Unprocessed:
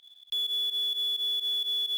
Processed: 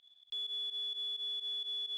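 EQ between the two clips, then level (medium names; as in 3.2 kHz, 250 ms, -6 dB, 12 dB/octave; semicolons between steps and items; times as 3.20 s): distance through air 73 m; -7.5 dB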